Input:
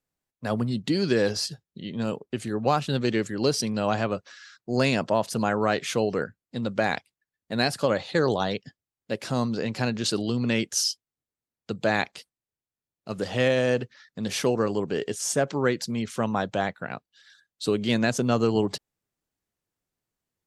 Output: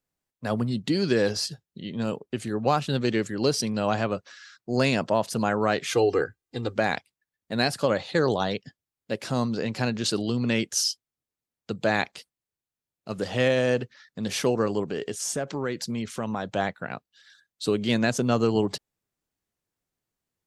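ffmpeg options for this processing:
-filter_complex "[0:a]asettb=1/sr,asplit=3[a][b][c];[a]atrim=end=5.914[d];[b]atrim=start=5.91:end=6.76,asetpts=PTS-STARTPTS,afade=t=in:d=0.004:c=qsin,afade=t=out:st=0.846:d=0.004:c=qsin,aecho=1:1:2.5:0.9,atrim=end_sample=37485[e];[c]atrim=start=6.756[f];[d][e]acrossfade=d=0.004:c1=hsin:c2=qsin[g];[g][f]acrossfade=d=0.004:c1=qsin:c2=hsin,asettb=1/sr,asplit=3[h][i][j];[h]atrim=end=14.834[k];[i]atrim=start=14.83:end=16.56,asetpts=PTS-STARTPTS,afade=t=in:d=0.004:c=qsin,afade=t=out:st=1.726:d=0.004:c=qsin,acompressor=threshold=-26dB:ratio=2.5:attack=3.2:release=140:knee=1:detection=peak[l];[j]atrim=start=16.556[m];[k][l]acrossfade=d=0.004:c1=hsin:c2=qsin[n];[n][m]acrossfade=d=0.004:c1=qsin:c2=hsin"

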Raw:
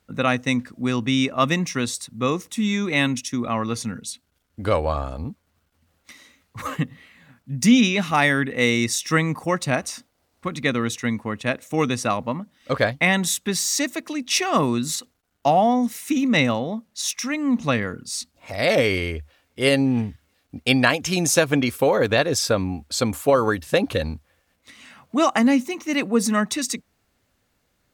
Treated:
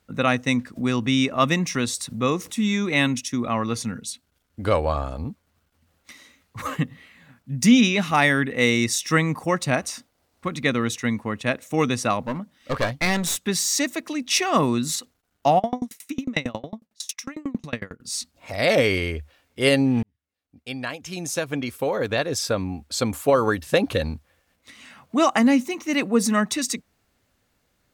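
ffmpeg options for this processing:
-filter_complex "[0:a]asplit=3[a][b][c];[a]afade=t=out:st=0.75:d=0.02[d];[b]acompressor=mode=upward:threshold=-23dB:ratio=2.5:attack=3.2:release=140:knee=2.83:detection=peak,afade=t=in:st=0.75:d=0.02,afade=t=out:st=2.5:d=0.02[e];[c]afade=t=in:st=2.5:d=0.02[f];[d][e][f]amix=inputs=3:normalize=0,asettb=1/sr,asplit=3[g][h][i];[g]atrim=end=12.264[j];[h]atrim=start=12.26:end=13.37,asetpts=PTS-STARTPTS,afade=t=in:d=0.004:c=qsin,afade=t=out:st=1.106:d=0.004:c=qsin,aeval=exprs='clip(val(0),-1,0.0501)':c=same[k];[i]atrim=start=13.366[l];[j][k]acrossfade=d=0.004:c1=hsin:c2=qsin[m];[m][l]acrossfade=d=0.004:c1=qsin:c2=hsin,asplit=3[n][o][p];[n]afade=t=out:st=15.58:d=0.02[q];[o]aeval=exprs='val(0)*pow(10,-32*if(lt(mod(11*n/s,1),2*abs(11)/1000),1-mod(11*n/s,1)/(2*abs(11)/1000),(mod(11*n/s,1)-2*abs(11)/1000)/(1-2*abs(11)/1000))/20)':c=same,afade=t=in:st=15.58:d=0.02,afade=t=out:st=18.03:d=0.02[r];[p]afade=t=in:st=18.03:d=0.02[s];[q][r][s]amix=inputs=3:normalize=0,asplit=2[t][u];[t]atrim=end=20.03,asetpts=PTS-STARTPTS,afade=t=out:st=20.026:d=0.004:c=hsin[v];[u]atrim=start=20.03,asetpts=PTS-STARTPTS,afade=t=in:d=3.64[w];[v][w]concat=n=2:v=0:a=1"

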